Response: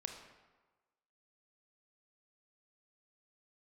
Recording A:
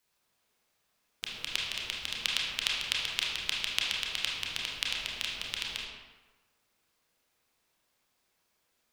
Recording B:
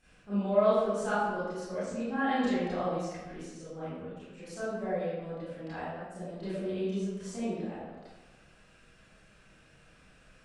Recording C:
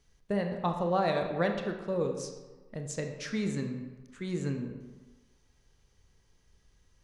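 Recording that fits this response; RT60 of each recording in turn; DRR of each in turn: C; 1.3 s, 1.3 s, 1.3 s; -3.5 dB, -13.5 dB, 4.0 dB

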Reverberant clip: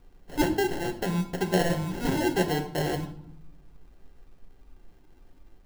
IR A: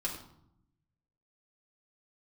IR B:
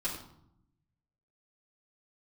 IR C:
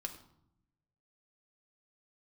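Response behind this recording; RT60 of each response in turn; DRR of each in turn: C; 0.75 s, 0.75 s, 0.75 s; -5.0 dB, -10.5 dB, 3.0 dB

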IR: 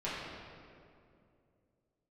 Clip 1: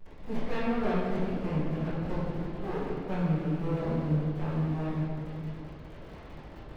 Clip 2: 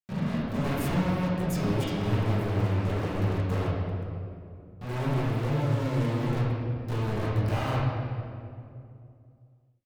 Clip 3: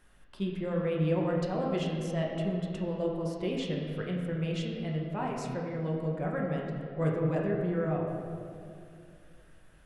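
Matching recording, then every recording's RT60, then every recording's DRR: 2; 2.5 s, 2.5 s, 2.5 s; -17.5 dB, -10.0 dB, -2.0 dB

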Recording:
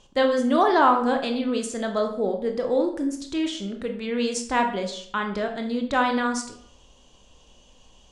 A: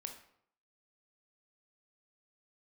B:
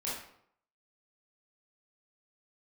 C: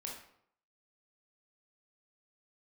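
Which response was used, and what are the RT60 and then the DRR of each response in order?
A; 0.65 s, 0.65 s, 0.65 s; 4.0 dB, -8.0 dB, -2.0 dB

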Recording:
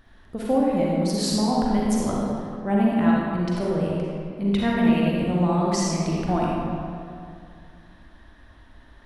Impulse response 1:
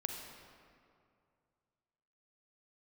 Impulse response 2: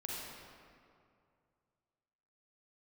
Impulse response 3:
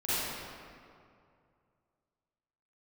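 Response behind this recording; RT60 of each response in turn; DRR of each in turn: 2; 2.4 s, 2.4 s, 2.4 s; 3.0 dB, -4.5 dB, -14.5 dB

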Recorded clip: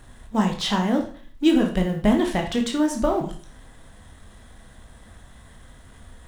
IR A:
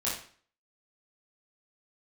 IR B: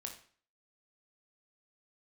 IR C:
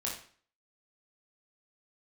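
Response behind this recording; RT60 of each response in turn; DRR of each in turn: B; 0.45 s, 0.45 s, 0.45 s; -8.0 dB, 2.0 dB, -4.0 dB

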